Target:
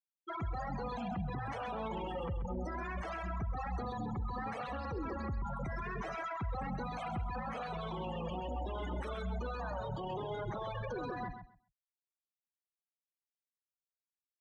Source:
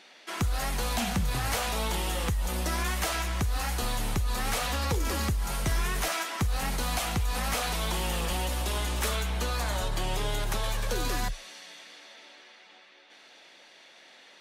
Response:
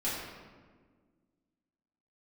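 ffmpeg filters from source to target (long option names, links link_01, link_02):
-af "highpass=110,equalizer=frequency=8800:width_type=o:width=1.3:gain=3,afftfilt=real='re*gte(hypot(re,im),0.0501)':imag='im*gte(hypot(re,im),0.0501)':win_size=1024:overlap=0.75,dynaudnorm=framelen=220:gausssize=3:maxgain=6.5dB,alimiter=level_in=9dB:limit=-24dB:level=0:latency=1:release=48,volume=-9dB,crystalizer=i=1:c=0,adynamicsmooth=sensitivity=1.5:basefreq=2000,aecho=1:1:132|264|396:0.355|0.0603|0.0103,volume=1.5dB"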